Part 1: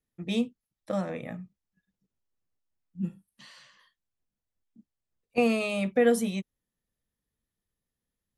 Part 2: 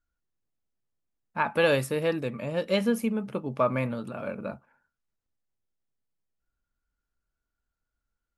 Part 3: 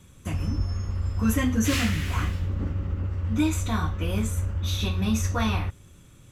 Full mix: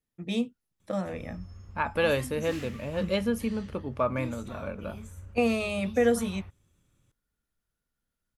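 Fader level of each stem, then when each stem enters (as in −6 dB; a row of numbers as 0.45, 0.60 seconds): −1.0, −2.5, −17.5 decibels; 0.00, 0.40, 0.80 seconds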